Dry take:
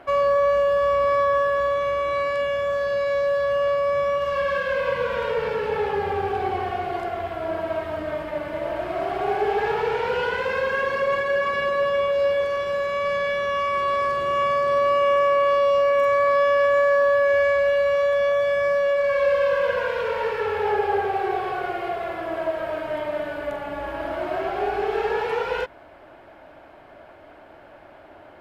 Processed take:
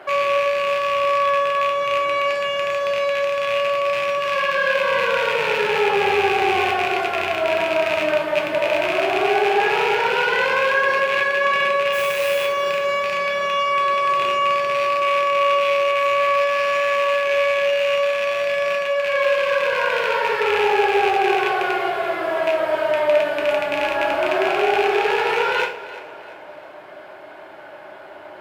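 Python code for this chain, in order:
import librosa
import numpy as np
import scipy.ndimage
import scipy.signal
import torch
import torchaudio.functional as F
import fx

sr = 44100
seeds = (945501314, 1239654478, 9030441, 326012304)

p1 = fx.rattle_buzz(x, sr, strikes_db=-36.0, level_db=-17.0)
p2 = fx.highpass(p1, sr, hz=510.0, slope=6)
p3 = fx.over_compress(p2, sr, threshold_db=-28.0, ratio=-1.0)
p4 = p2 + (p3 * librosa.db_to_amplitude(-2.5))
p5 = fx.mod_noise(p4, sr, seeds[0], snr_db=19, at=(11.92, 12.45))
p6 = p5 + fx.echo_feedback(p5, sr, ms=343, feedback_pct=42, wet_db=-16.0, dry=0)
y = fx.rev_gated(p6, sr, seeds[1], gate_ms=130, shape='falling', drr_db=1.0)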